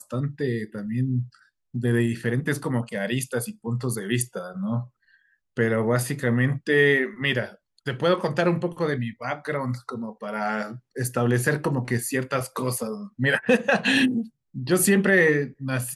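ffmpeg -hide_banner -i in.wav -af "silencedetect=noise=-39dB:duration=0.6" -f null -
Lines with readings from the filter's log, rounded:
silence_start: 4.86
silence_end: 5.57 | silence_duration: 0.71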